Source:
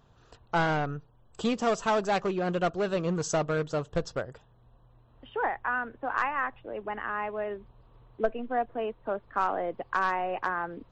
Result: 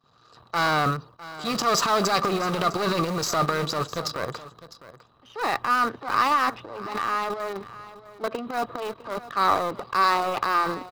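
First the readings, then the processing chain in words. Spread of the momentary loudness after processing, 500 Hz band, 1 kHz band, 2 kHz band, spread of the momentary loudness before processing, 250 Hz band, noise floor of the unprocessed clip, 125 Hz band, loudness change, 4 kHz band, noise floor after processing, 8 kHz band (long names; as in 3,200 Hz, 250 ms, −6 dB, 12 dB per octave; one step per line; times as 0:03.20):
13 LU, +1.5 dB, +7.0 dB, +4.0 dB, 8 LU, +2.5 dB, −60 dBFS, +3.0 dB, +5.5 dB, +12.5 dB, −58 dBFS, +9.5 dB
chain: gain on one half-wave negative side −12 dB
noise gate with hold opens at −54 dBFS
high-pass filter 130 Hz 12 dB per octave
parametric band 4,800 Hz +11 dB 0.33 octaves
transient designer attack −6 dB, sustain +11 dB
in parallel at −10.5 dB: bit reduction 5 bits
on the sum: hollow resonant body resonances 1,200/3,900 Hz, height 14 dB, ringing for 25 ms
on a send: single-tap delay 655 ms −16.5 dB
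on the sum: level +3.5 dB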